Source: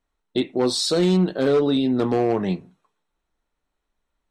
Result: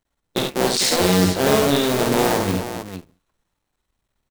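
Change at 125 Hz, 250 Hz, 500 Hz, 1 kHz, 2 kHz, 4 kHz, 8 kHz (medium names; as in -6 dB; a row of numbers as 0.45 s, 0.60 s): +2.5 dB, 0.0 dB, +1.5 dB, +7.5 dB, +11.0 dB, +5.5 dB, +10.0 dB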